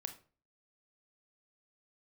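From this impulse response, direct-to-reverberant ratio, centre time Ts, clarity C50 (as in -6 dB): 7.0 dB, 9 ms, 12.0 dB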